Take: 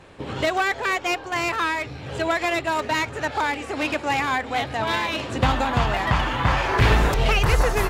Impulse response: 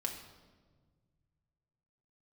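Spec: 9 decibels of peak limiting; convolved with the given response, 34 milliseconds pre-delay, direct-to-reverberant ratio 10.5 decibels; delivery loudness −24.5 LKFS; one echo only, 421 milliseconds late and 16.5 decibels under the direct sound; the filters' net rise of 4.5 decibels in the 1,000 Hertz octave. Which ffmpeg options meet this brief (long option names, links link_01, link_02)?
-filter_complex "[0:a]equalizer=frequency=1000:width_type=o:gain=5.5,alimiter=limit=-15dB:level=0:latency=1,aecho=1:1:421:0.15,asplit=2[link_01][link_02];[1:a]atrim=start_sample=2205,adelay=34[link_03];[link_02][link_03]afir=irnorm=-1:irlink=0,volume=-11.5dB[link_04];[link_01][link_04]amix=inputs=2:normalize=0,volume=-1dB"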